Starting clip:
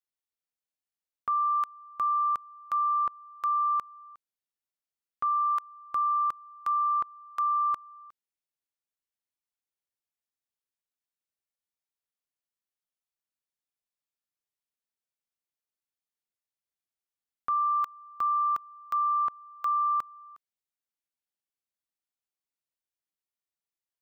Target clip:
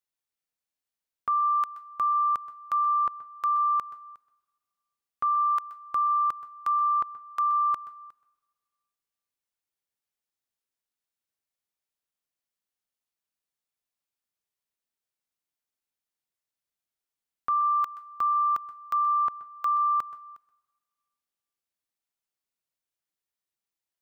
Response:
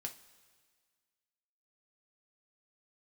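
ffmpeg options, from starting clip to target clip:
-filter_complex "[0:a]asplit=2[s0][s1];[1:a]atrim=start_sample=2205,adelay=126[s2];[s1][s2]afir=irnorm=-1:irlink=0,volume=0.211[s3];[s0][s3]amix=inputs=2:normalize=0,volume=1.26"

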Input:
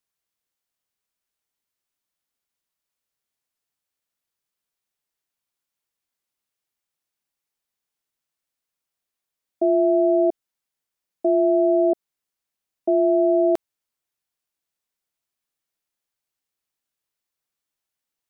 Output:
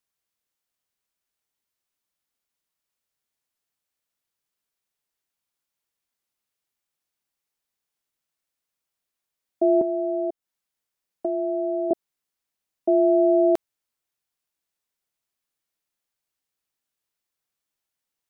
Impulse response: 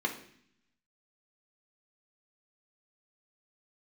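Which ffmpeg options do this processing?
-filter_complex "[0:a]asettb=1/sr,asplit=3[s0][s1][s2];[s0]atrim=end=9.814[s3];[s1]atrim=start=9.81:end=11.91,asetpts=PTS-STARTPTS,afade=t=in:d=0.004:c=qsin,afade=t=out:st=2.096:d=0.004:c=qsin,acrossover=split=400|840[s4][s5][s6];[s4]acompressor=threshold=0.0178:ratio=4[s7];[s5]acompressor=threshold=0.0398:ratio=4[s8];[s6]acompressor=threshold=0.00631:ratio=4[s9];[s7][s8][s9]amix=inputs=3:normalize=0[s10];[s2]atrim=start=11.906[s11];[s3][s10]acrossfade=d=0.004:c1=hsin:c2=qsin[s12];[s12][s11]acrossfade=d=0.004:c1=qsin:c2=hsin"

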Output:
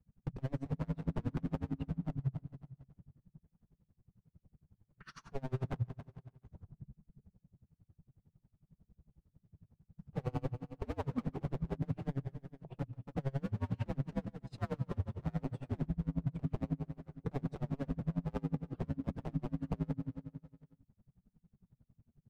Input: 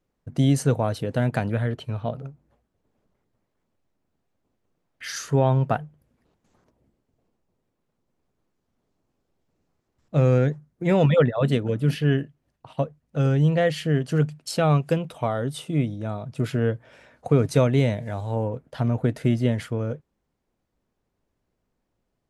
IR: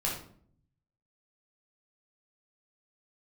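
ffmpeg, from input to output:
-af "acompressor=mode=upward:threshold=0.0316:ratio=2.5,agate=range=0.0224:threshold=0.01:ratio=3:detection=peak,bandpass=f=140:t=q:w=1.4:csg=0,acompressor=threshold=0.0316:ratio=5,aeval=exprs='0.02*(abs(mod(val(0)/0.02+3,4)-2)-1)':c=same,aecho=1:1:142|284|426|568|710|852:0.251|0.146|0.0845|0.049|0.0284|0.0165,afreqshift=-270,flanger=delay=4.1:depth=9.2:regen=-52:speed=0.56:shape=sinusoidal,alimiter=level_in=6.68:limit=0.0631:level=0:latency=1:release=77,volume=0.15,aeval=exprs='val(0)*pow(10,-31*(0.5-0.5*cos(2*PI*11*n/s))/20)':c=same,volume=6.68"

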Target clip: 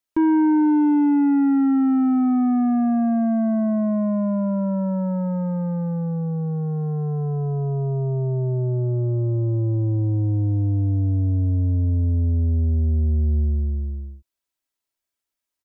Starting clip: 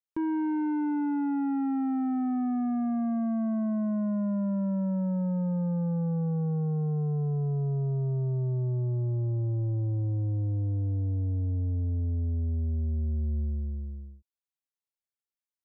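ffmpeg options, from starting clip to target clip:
-af "aecho=1:1:3.1:0.43,volume=2.66"

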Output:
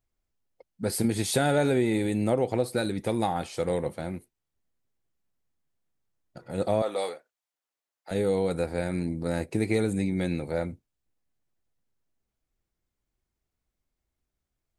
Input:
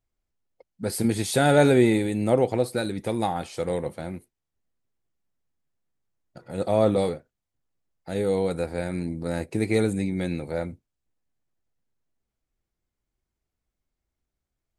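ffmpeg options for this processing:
-filter_complex "[0:a]asettb=1/sr,asplit=3[s0][s1][s2];[s0]atrim=end=6.824[s3];[s1]atrim=start=6.82:end=8.11,asetpts=PTS-STARTPTS,afade=t=in:d=0.004:c=qsin,afade=t=out:st=1.286:d=0.004:c=qsin,highpass=660[s4];[s2]atrim=start=8.106[s5];[s3][s4]acrossfade=d=0.004:c1=hsin:c2=qsin[s6];[s6][s5]acrossfade=d=0.004:c1=qsin:c2=hsin,acompressor=threshold=0.1:ratio=6"

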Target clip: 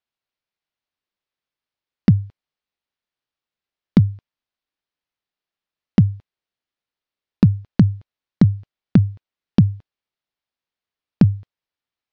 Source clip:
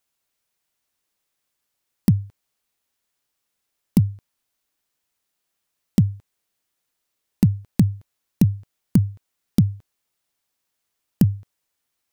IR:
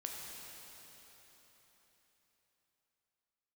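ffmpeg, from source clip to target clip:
-af "agate=range=0.282:threshold=0.02:ratio=16:detection=peak,lowpass=f=4700:w=0.5412,lowpass=f=4700:w=1.3066,volume=1.5"

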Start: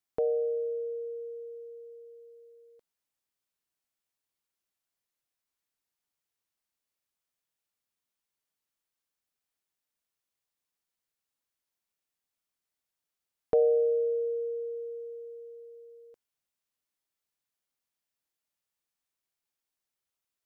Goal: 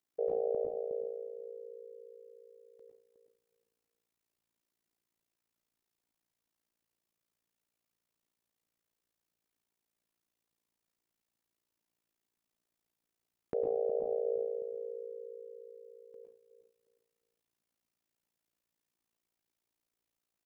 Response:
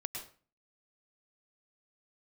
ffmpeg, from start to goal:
-filter_complex "[0:a]asplit=2[s0][s1];[s1]adelay=363,lowpass=f=830:p=1,volume=0.335,asplit=2[s2][s3];[s3]adelay=363,lowpass=f=830:p=1,volume=0.26,asplit=2[s4][s5];[s5]adelay=363,lowpass=f=830:p=1,volume=0.26[s6];[s2][s4][s6]amix=inputs=3:normalize=0[s7];[s0][s7]amix=inputs=2:normalize=0[s8];[1:a]atrim=start_sample=2205[s9];[s8][s9]afir=irnorm=-1:irlink=0,acompressor=threshold=0.02:ratio=2.5,equalizer=f=250:w=0.59:g=8.5,alimiter=level_in=1.41:limit=0.0631:level=0:latency=1:release=39,volume=0.708,tremolo=f=57:d=0.947,volume=1.58"

